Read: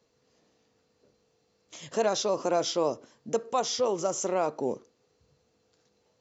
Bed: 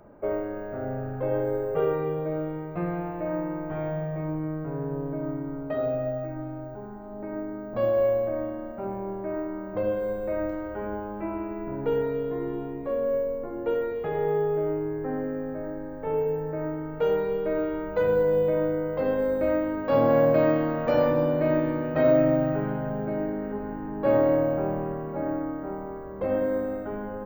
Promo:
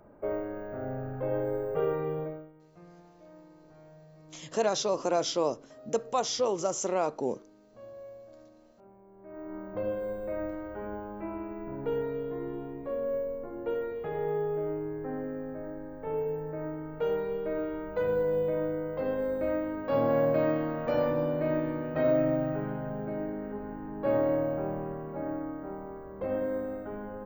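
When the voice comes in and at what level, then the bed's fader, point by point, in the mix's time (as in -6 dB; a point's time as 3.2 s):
2.60 s, -1.0 dB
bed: 2.23 s -4 dB
2.53 s -23.5 dB
9.1 s -23.5 dB
9.55 s -5.5 dB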